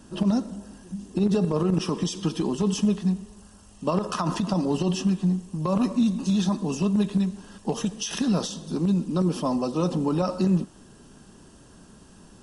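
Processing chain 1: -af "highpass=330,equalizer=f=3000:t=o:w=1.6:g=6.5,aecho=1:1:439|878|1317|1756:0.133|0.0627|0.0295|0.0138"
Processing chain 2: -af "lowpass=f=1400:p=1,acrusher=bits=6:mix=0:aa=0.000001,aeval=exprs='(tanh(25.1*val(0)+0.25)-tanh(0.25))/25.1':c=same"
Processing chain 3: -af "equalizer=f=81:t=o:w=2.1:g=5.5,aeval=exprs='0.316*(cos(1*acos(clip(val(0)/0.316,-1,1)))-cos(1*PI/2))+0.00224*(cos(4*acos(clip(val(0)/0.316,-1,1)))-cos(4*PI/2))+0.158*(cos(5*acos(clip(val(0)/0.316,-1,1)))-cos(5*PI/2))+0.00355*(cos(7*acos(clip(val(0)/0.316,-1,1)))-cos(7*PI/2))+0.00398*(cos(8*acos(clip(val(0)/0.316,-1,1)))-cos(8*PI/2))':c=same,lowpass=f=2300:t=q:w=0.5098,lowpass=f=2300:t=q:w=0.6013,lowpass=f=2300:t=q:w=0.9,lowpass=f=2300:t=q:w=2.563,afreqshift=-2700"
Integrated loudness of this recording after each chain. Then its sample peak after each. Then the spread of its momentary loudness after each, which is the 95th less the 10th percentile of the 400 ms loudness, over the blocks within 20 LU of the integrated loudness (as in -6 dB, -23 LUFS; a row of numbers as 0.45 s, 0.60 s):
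-29.5 LUFS, -33.0 LUFS, -14.0 LUFS; -11.5 dBFS, -26.0 dBFS, -4.0 dBFS; 15 LU, 6 LU, 7 LU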